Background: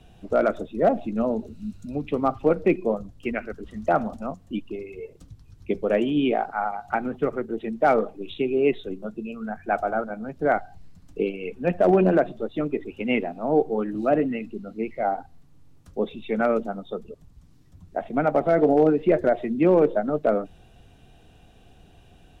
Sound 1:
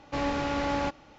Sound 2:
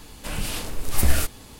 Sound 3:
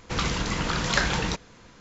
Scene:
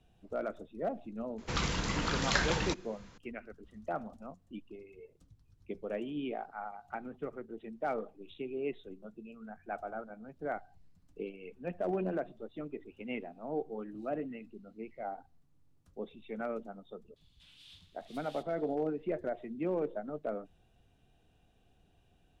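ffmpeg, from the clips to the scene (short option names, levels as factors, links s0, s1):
-filter_complex "[0:a]volume=0.168[s0];[2:a]bandpass=f=3500:t=q:w=5.6:csg=0[s1];[3:a]atrim=end=1.8,asetpts=PTS-STARTPTS,volume=0.501,afade=t=in:d=0.004:c=hsin,afade=t=out:st=1.796:d=0.004:c=hsin,adelay=1380[s2];[s1]atrim=end=1.59,asetpts=PTS-STARTPTS,volume=0.188,afade=t=in:d=0.004:c=hsin,afade=t=out:st=1.586:d=0.004:c=hsin,adelay=756756S[s3];[s0][s2][s3]amix=inputs=3:normalize=0"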